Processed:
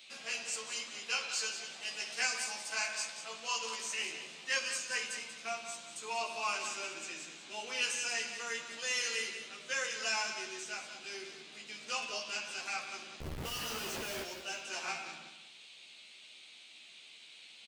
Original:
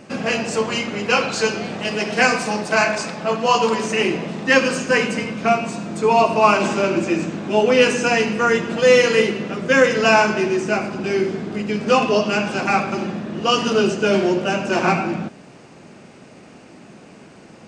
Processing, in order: differentiator; band noise 2.2–4.3 kHz -50 dBFS; 13.20–14.23 s: Schmitt trigger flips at -40.5 dBFS; doubling 13 ms -4 dB; on a send: feedback delay 187 ms, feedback 26%, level -10 dB; on the sum: trim -7.5 dB

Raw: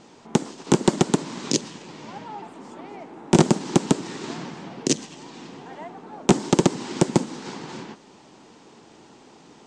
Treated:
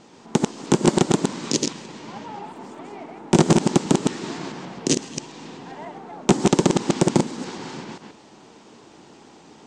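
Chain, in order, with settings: chunks repeated in reverse 133 ms, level -2.5 dB; 2.49–2.90 s: crackle 36 per s -> 15 per s -46 dBFS

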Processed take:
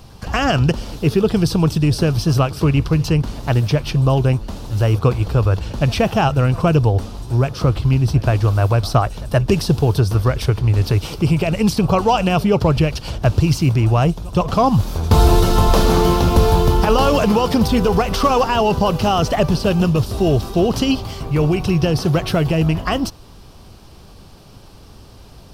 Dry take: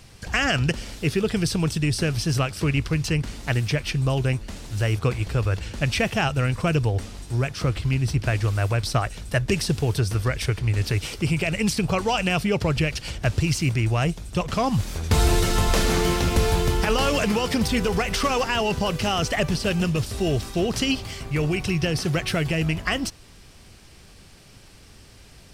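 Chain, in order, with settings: graphic EQ 1/2/8 kHz +5/-12/-10 dB; pre-echo 121 ms -22 dB; trim +7.5 dB

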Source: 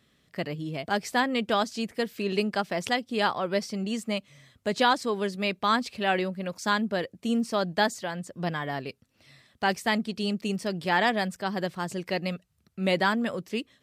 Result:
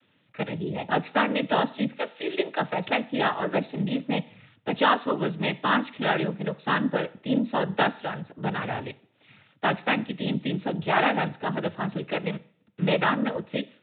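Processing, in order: 1.97–2.59 s: high-pass 370 Hz 24 dB/octave; noise-vocoded speech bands 12; two-slope reverb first 0.52 s, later 1.5 s, from -27 dB, DRR 16 dB; resampled via 8 kHz; trim +2 dB

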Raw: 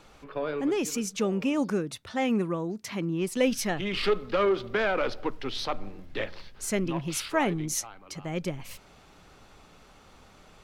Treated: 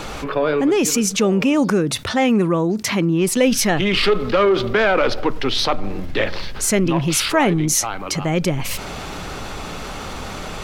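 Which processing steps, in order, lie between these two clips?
level flattener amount 50%; trim +7.5 dB

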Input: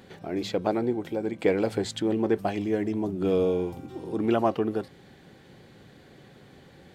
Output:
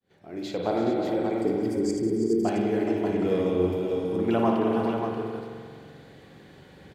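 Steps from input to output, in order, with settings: fade-in on the opening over 0.70 s; time-frequency box 1.39–2.44 s, 470–4500 Hz -27 dB; on a send: multi-tap echo 58/189/328/369/423/584 ms -8.5/-13/-10/-16.5/-9/-6.5 dB; on the sum: spring tank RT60 2.2 s, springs 44 ms, chirp 20 ms, DRR 1.5 dB; trim -2 dB

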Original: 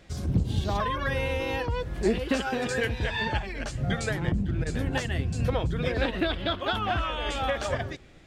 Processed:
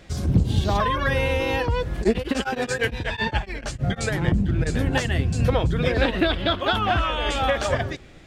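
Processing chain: 1.96–4.11 s: tremolo of two beating tones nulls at 11 Hz -> 5.3 Hz; trim +6 dB

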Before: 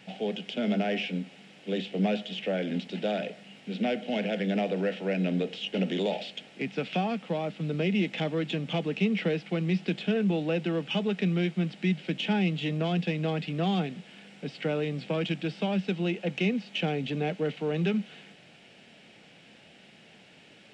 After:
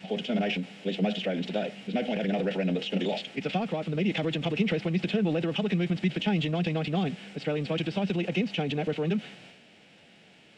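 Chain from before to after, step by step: time stretch by phase-locked vocoder 0.51×; transient shaper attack +2 dB, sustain +7 dB

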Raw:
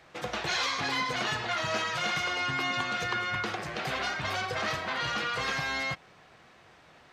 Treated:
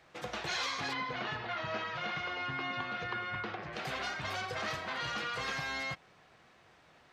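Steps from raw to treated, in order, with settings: 0.93–3.73 s: Gaussian low-pass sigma 2.1 samples; trim -5.5 dB

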